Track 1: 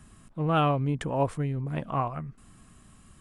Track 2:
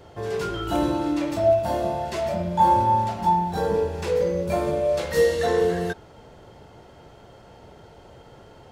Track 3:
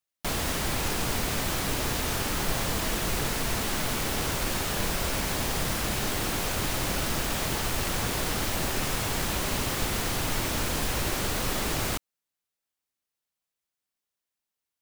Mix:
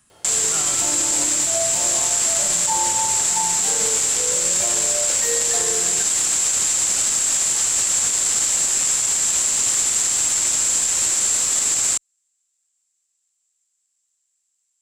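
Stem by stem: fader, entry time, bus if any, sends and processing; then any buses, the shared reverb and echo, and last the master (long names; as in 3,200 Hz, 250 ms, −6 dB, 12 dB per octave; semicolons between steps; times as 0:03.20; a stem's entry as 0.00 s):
−7.0 dB, 0.00 s, no send, no processing
−2.5 dB, 0.10 s, no send, no processing
0.0 dB, 0.00 s, no send, low-pass with resonance 7,500 Hz, resonance Q 13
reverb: not used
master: spectral tilt +3 dB per octave; brickwall limiter −10 dBFS, peak gain reduction 7.5 dB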